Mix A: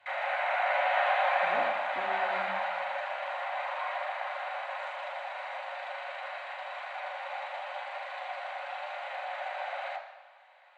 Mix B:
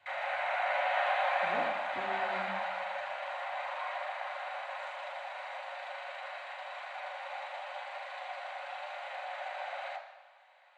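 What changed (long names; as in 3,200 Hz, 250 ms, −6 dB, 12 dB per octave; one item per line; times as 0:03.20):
background −3.5 dB
master: add bass and treble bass +4 dB, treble +5 dB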